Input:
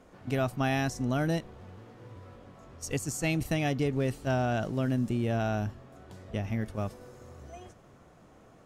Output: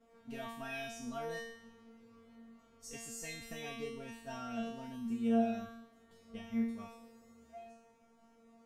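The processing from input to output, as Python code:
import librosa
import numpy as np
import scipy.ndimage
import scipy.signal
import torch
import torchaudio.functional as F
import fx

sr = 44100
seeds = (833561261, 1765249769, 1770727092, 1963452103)

y = fx.comb_fb(x, sr, f0_hz=230.0, decay_s=0.76, harmonics='all', damping=0.0, mix_pct=100)
y = F.gain(torch.from_numpy(y), 8.5).numpy()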